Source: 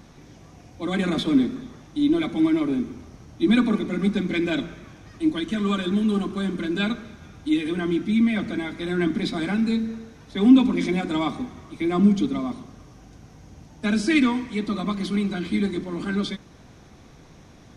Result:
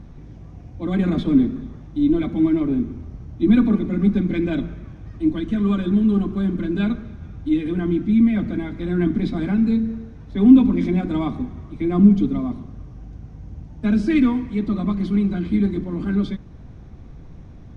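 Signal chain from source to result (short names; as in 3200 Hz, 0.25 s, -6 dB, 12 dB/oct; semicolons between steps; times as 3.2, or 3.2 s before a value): RIAA curve playback; gain -3 dB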